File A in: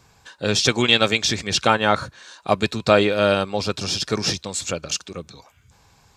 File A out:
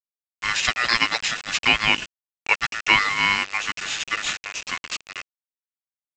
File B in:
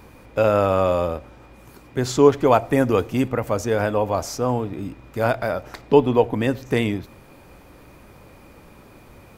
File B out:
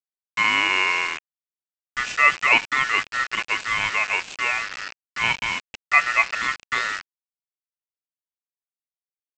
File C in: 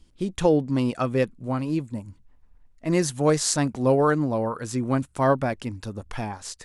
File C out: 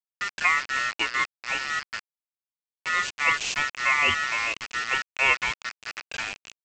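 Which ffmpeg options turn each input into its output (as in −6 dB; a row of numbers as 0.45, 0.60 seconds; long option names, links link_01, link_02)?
-af "aeval=exprs='val(0)*sin(2*PI*1600*n/s)':channel_layout=same,agate=range=-33dB:threshold=-43dB:ratio=3:detection=peak,aresample=16000,acrusher=bits=4:mix=0:aa=0.000001,aresample=44100,equalizer=frequency=2600:width=2.9:gain=11.5,volume=-3.5dB"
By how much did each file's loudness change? −1.5, 0.0, −0.5 LU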